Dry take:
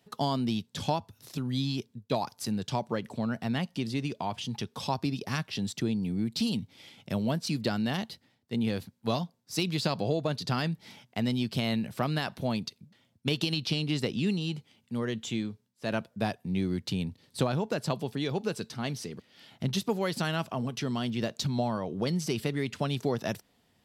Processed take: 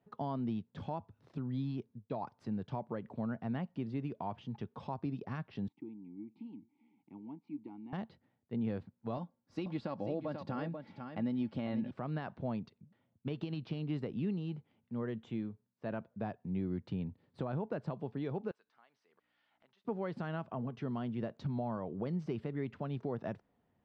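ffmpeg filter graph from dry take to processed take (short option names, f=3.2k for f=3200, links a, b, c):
-filter_complex "[0:a]asettb=1/sr,asplit=3[a][b][c];[a]atrim=end=5.684[d];[b]atrim=start=5.68:end=7.93,asetpts=PTS-STARTPTS,afade=t=in:d=0.004:c=qsin,afade=t=out:st=2.246:d=0.004:c=qsin,asplit=3[e][f][g];[e]bandpass=f=300:t=q:w=8,volume=0dB[h];[f]bandpass=f=870:t=q:w=8,volume=-6dB[i];[g]bandpass=f=2.24k:t=q:w=8,volume=-9dB[j];[h][i][j]amix=inputs=3:normalize=0,aecho=1:1:403:0.0631,atrim=end_sample=99225[k];[c]atrim=start=7.926[l];[d][k]acrossfade=d=0.004:c1=hsin:c2=qsin[m];[m][l]acrossfade=d=0.004:c1=qsin:c2=hsin,asettb=1/sr,asplit=3[n][o][p];[n]atrim=end=9.174[q];[o]atrim=start=9.17:end=11.91,asetpts=PTS-STARTPTS,afade=t=in:d=0.004:c=qsin,afade=t=out:st=2.736:d=0.004:c=qsin,aecho=1:1:3.6:0.47,atrim=end_sample=120834,aecho=1:1:488:0.335,atrim=end_sample=120834[r];[p]atrim=start=11.906[s];[q][r]acrossfade=d=0.004:c1=hsin:c2=qsin[t];[t][s]acrossfade=d=0.004:c1=qsin:c2=hsin,asettb=1/sr,asplit=3[u][v][w];[u]atrim=end=18.514[x];[v]atrim=start=18.51:end=19.85,asetpts=PTS-STARTPTS,afade=t=in:d=0.004:c=qsin,afade=t=out:st=1.336:d=0.004:c=qsin,aeval=exprs='val(0)+0.00447*(sin(2*PI*60*n/s)+sin(2*PI*2*60*n/s)/2+sin(2*PI*3*60*n/s)/3+sin(2*PI*4*60*n/s)/4+sin(2*PI*5*60*n/s)/5)':c=same,highpass=1k,acompressor=threshold=-59dB:ratio=2.5:attack=3.2:release=140:knee=1:detection=peak[y];[w]atrim=start=19.846[z];[x][y]acrossfade=d=0.004:c1=hsin:c2=qsin[aa];[aa][z]acrossfade=d=0.004:c1=qsin:c2=hsin,lowpass=1.4k,alimiter=limit=-21dB:level=0:latency=1:release=128,volume=-6dB"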